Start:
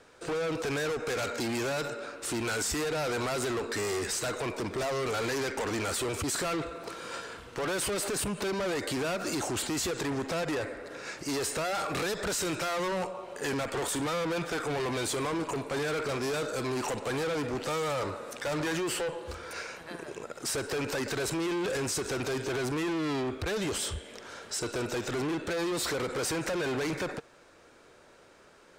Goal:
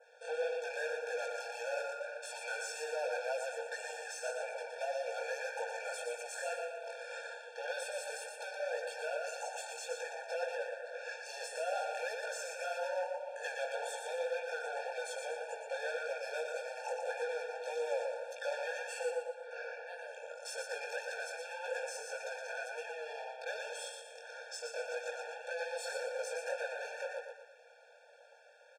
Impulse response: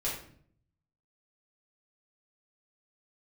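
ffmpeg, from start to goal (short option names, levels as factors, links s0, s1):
-filter_complex "[0:a]asettb=1/sr,asplit=3[s0][s1][s2];[s0]atrim=end=19.234[s3];[s1]atrim=start=19.23:end=19.87,asetpts=PTS-STARTPTS,afade=t=in:d=0.004:c=qsin,afade=t=out:st=0.636:d=0.004:c=qsin,aemphasis=mode=reproduction:type=riaa[s4];[s2]atrim=start=19.866[s5];[s3][s4]acrossfade=d=0.004:c1=hsin:c2=qsin[s6];[s6][s5]acrossfade=d=0.004:c1=qsin:c2=hsin,bandreject=f=75.78:t=h:w=4,bandreject=f=151.56:t=h:w=4,bandreject=f=227.34:t=h:w=4,bandreject=f=303.12:t=h:w=4,bandreject=f=378.9:t=h:w=4,bandreject=f=454.68:t=h:w=4,adynamicequalizer=threshold=0.00224:dfrequency=3700:dqfactor=1.8:tfrequency=3700:tqfactor=1.8:attack=5:release=100:ratio=0.375:range=3.5:mode=cutabove:tftype=bell,alimiter=level_in=1.68:limit=0.0631:level=0:latency=1:release=275,volume=0.596,flanger=delay=16.5:depth=7.4:speed=1.8,adynamicsmooth=sensitivity=4:basefreq=7100,aecho=1:1:118|236|354|472|590:0.562|0.219|0.0855|0.0334|0.013,afftfilt=real='re*eq(mod(floor(b*sr/1024/460),2),1)':imag='im*eq(mod(floor(b*sr/1024/460),2),1)':win_size=1024:overlap=0.75,volume=1.19"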